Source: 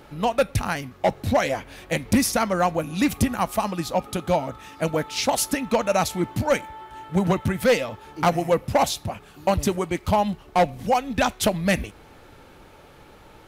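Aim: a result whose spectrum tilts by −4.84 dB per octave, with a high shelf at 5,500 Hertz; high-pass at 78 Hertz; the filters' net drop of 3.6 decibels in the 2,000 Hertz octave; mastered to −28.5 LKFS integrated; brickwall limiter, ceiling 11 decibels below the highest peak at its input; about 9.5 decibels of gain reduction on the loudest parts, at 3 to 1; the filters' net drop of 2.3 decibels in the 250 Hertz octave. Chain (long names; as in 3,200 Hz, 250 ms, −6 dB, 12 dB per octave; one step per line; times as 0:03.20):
high-pass filter 78 Hz
parametric band 250 Hz −3 dB
parametric band 2,000 Hz −4 dB
high-shelf EQ 5,500 Hz −4 dB
downward compressor 3 to 1, threshold −29 dBFS
level +8 dB
brickwall limiter −18.5 dBFS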